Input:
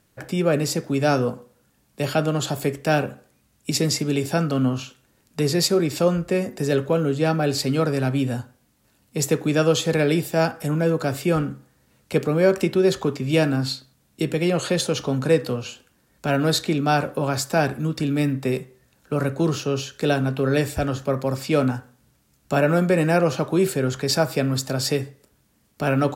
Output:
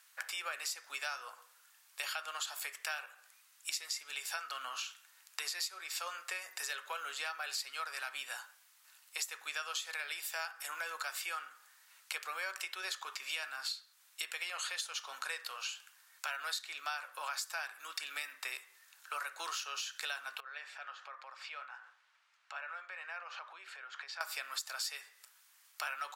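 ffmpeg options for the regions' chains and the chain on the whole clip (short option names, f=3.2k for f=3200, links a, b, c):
-filter_complex "[0:a]asettb=1/sr,asplit=3[a][b][c];[a]atrim=end=20.404[d];[b]atrim=start=20.4:end=24.21,asetpts=PTS-STARTPTS,afade=t=in:d=0.004:c=qsin,afade=t=out:st=3.806:d=0.004:c=qsin,acompressor=threshold=-42dB:ratio=2.5:attack=3.2:release=140:knee=1:detection=peak,highpass=350,lowpass=2.8k[e];[c]atrim=start=24.206[f];[d][e]acrossfade=d=0.004:c1=hsin:c2=qsin[g];[g][f]acrossfade=d=0.004:c1=qsin:c2=hsin,highpass=f=1.1k:w=0.5412,highpass=f=1.1k:w=1.3066,acompressor=threshold=-41dB:ratio=6,volume=3.5dB"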